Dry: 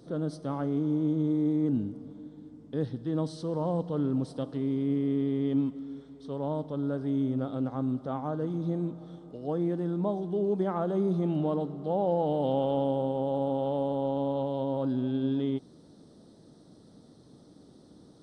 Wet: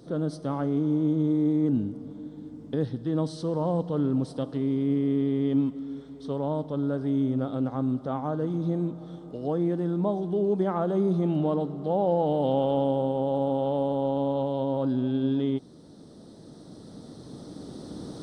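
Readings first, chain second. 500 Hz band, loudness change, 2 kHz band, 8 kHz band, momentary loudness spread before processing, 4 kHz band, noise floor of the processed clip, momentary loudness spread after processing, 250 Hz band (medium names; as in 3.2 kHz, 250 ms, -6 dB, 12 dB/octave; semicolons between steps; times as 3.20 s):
+3.0 dB, +3.0 dB, +3.0 dB, no reading, 8 LU, +3.5 dB, -48 dBFS, 15 LU, +3.0 dB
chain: recorder AGC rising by 5.1 dB/s; trim +3 dB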